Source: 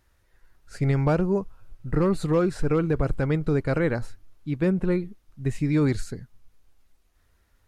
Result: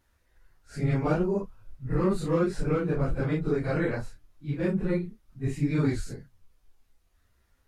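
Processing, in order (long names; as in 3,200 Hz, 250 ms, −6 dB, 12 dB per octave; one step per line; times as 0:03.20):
random phases in long frames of 100 ms
level −3 dB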